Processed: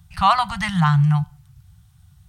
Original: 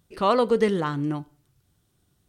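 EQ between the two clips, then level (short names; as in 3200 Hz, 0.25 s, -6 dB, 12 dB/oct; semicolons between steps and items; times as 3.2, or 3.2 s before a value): Chebyshev band-stop 170–750 Hz, order 4; bell 72 Hz +13 dB 2.7 oct; +8.5 dB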